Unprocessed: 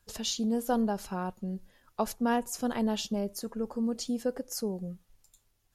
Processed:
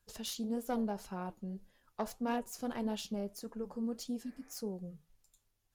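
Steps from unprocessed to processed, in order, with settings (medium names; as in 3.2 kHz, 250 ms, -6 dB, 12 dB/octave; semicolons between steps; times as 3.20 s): self-modulated delay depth 0.085 ms; spectral replace 4.27–4.51 s, 300–2500 Hz; flange 1.7 Hz, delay 4.6 ms, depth 5.8 ms, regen -78%; trim -2.5 dB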